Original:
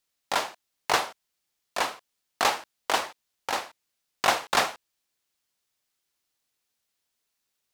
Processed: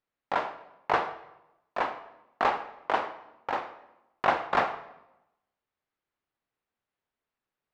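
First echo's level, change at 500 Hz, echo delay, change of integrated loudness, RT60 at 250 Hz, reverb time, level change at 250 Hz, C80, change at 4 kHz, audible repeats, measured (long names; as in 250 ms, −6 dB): no echo audible, 0.0 dB, no echo audible, −2.5 dB, 1.0 s, 0.90 s, +0.5 dB, 14.0 dB, −12.5 dB, no echo audible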